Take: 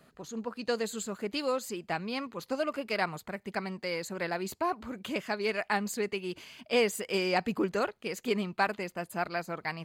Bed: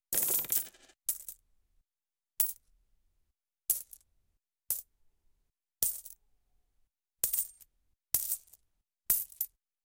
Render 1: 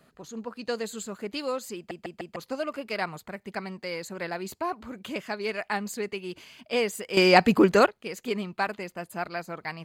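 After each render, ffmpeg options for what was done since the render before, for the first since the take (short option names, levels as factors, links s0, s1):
-filter_complex "[0:a]asplit=7[s0][s1][s2][s3][s4][s5][s6];[s0]atrim=end=1.912[s7];[s1]atrim=start=1.758:end=1.912[s8];[s2]atrim=start=1.758:end=1.912[s9];[s3]atrim=start=1.758:end=1.912[s10];[s4]atrim=start=2.358:end=7.172[s11];[s5]atrim=start=7.168:end=7.862,asetpts=PTS-STARTPTS,volume=3.55[s12];[s6]atrim=start=7.858[s13];[s7][s8]acrossfade=d=0.004:c1=hsin:c2=hsin[s14];[s14][s9]acrossfade=d=0.004:c1=hsin:c2=hsin[s15];[s15][s10]acrossfade=d=0.004:c1=hsin:c2=hsin[s16];[s16][s11]acrossfade=d=0.004:c1=hsin:c2=hsin[s17];[s17][s12]acrossfade=d=0.004:c1=hsin:c2=hsin[s18];[s18][s13]acrossfade=d=0.004:c1=hsin:c2=hsin"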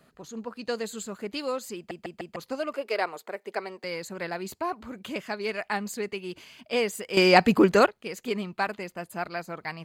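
-filter_complex "[0:a]asettb=1/sr,asplit=3[s0][s1][s2];[s0]atrim=end=2.744[s3];[s1]atrim=start=2.74:end=3.84,asetpts=PTS-STARTPTS,afade=t=in:d=0.004:c=qsin,afade=t=out:st=1.096:d=0.004:c=qsin,highpass=f=440:t=q:w=2.1[s4];[s2]atrim=start=3.836[s5];[s3][s4]acrossfade=d=0.004:c1=hsin:c2=qsin[s6];[s6][s5]acrossfade=d=0.004:c1=qsin:c2=hsin"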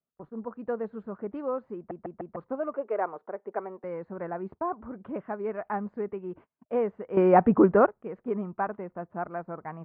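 -af "lowpass=f=1300:w=0.5412,lowpass=f=1300:w=1.3066,agate=range=0.0224:threshold=0.00398:ratio=16:detection=peak"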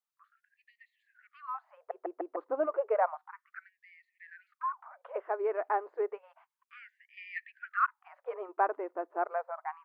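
-filter_complex "[0:a]acrossover=split=1000[s0][s1];[s0]crystalizer=i=9:c=0[s2];[s2][s1]amix=inputs=2:normalize=0,afftfilt=real='re*gte(b*sr/1024,270*pow(1800/270,0.5+0.5*sin(2*PI*0.31*pts/sr)))':imag='im*gte(b*sr/1024,270*pow(1800/270,0.5+0.5*sin(2*PI*0.31*pts/sr)))':win_size=1024:overlap=0.75"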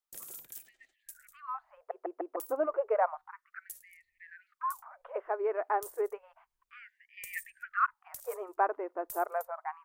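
-filter_complex "[1:a]volume=0.158[s0];[0:a][s0]amix=inputs=2:normalize=0"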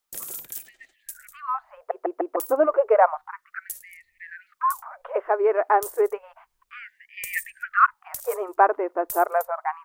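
-af "volume=3.55"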